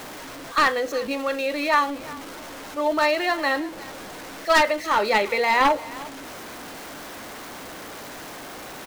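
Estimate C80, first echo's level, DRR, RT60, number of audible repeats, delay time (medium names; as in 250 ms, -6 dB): no reverb, -19.5 dB, no reverb, no reverb, 1, 354 ms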